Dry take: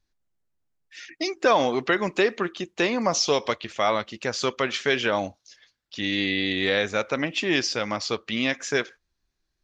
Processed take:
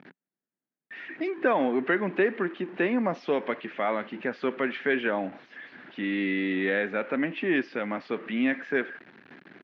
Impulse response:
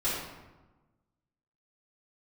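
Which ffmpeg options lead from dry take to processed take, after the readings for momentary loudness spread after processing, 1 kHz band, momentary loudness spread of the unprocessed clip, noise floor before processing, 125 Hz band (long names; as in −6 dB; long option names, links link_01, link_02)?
13 LU, −5.5 dB, 8 LU, −78 dBFS, −5.0 dB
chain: -af "aeval=exprs='val(0)+0.5*0.0224*sgn(val(0))':channel_layout=same,highpass=frequency=170:width=0.5412,highpass=frequency=170:width=1.3066,equalizer=frequency=180:width_type=q:width=4:gain=4,equalizer=frequency=260:width_type=q:width=4:gain=7,equalizer=frequency=370:width_type=q:width=4:gain=3,equalizer=frequency=1100:width_type=q:width=4:gain=-3,equalizer=frequency=1700:width_type=q:width=4:gain=5,lowpass=frequency=2500:width=0.5412,lowpass=frequency=2500:width=1.3066,volume=-5.5dB"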